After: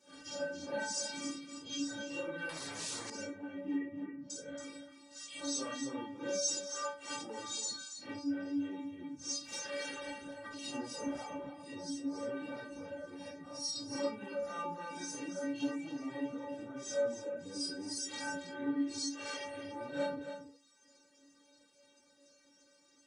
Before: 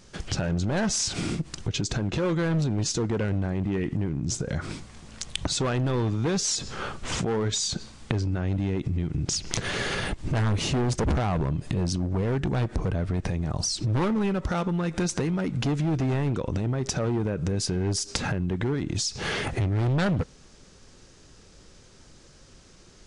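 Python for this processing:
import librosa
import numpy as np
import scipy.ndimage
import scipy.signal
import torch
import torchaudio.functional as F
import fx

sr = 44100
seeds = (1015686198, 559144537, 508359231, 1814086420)

y = fx.phase_scramble(x, sr, seeds[0], window_ms=200)
y = fx.lowpass(y, sr, hz=2400.0, slope=24, at=(3.75, 4.3))
y = fx.dereverb_blind(y, sr, rt60_s=0.98)
y = scipy.signal.sosfilt(scipy.signal.butter(2, 190.0, 'highpass', fs=sr, output='sos'), y)
y = fx.peak_eq(y, sr, hz=480.0, db=5.0, octaves=0.66)
y = fx.over_compress(y, sr, threshold_db=-36.0, ratio=-1.0, at=(9.98, 10.64))
y = fx.stiff_resonator(y, sr, f0_hz=280.0, decay_s=0.41, stiffness=0.008)
y = y + 10.0 ** (-9.0 / 20.0) * np.pad(y, (int(277 * sr / 1000.0), 0))[:len(y)]
y = fx.spectral_comp(y, sr, ratio=4.0, at=(2.49, 3.1))
y = y * librosa.db_to_amplitude(6.0)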